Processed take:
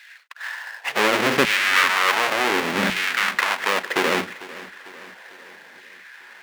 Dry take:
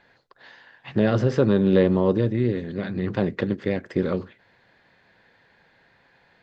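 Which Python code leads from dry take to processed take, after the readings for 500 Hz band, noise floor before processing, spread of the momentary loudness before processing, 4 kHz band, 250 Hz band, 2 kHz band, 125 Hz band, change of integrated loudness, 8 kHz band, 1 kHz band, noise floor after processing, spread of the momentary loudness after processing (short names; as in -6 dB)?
-3.0 dB, -61 dBFS, 10 LU, +18.5 dB, -7.0 dB, +17.5 dB, -14.0 dB, +3.0 dB, n/a, +14.0 dB, -46 dBFS, 19 LU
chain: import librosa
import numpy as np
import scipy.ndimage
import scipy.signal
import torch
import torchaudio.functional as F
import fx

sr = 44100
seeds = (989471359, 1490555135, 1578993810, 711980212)

p1 = fx.halfwave_hold(x, sr)
p2 = fx.peak_eq(p1, sr, hz=2100.0, db=13.0, octaves=2.2)
p3 = fx.over_compress(p2, sr, threshold_db=-21.0, ratio=-1.0)
p4 = p2 + F.gain(torch.from_numpy(p3), -1.0).numpy()
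p5 = fx.filter_lfo_highpass(p4, sr, shape='saw_down', hz=0.69, low_hz=210.0, high_hz=2400.0, q=1.4)
p6 = fx.hum_notches(p5, sr, base_hz=60, count=3)
p7 = p6 + fx.echo_feedback(p6, sr, ms=448, feedback_pct=55, wet_db=-18, dry=0)
y = F.gain(torch.from_numpy(p7), -8.0).numpy()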